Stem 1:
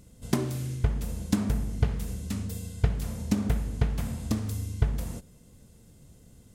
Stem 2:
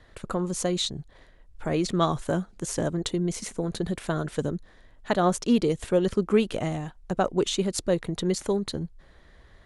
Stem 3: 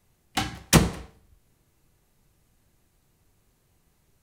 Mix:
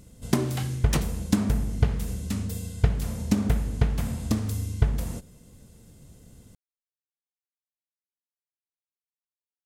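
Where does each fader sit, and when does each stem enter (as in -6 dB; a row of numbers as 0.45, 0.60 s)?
+3.0 dB, off, -10.5 dB; 0.00 s, off, 0.20 s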